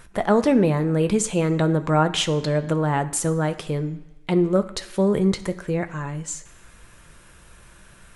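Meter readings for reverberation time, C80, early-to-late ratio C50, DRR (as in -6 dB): 1.2 s, 17.0 dB, 15.0 dB, 7.5 dB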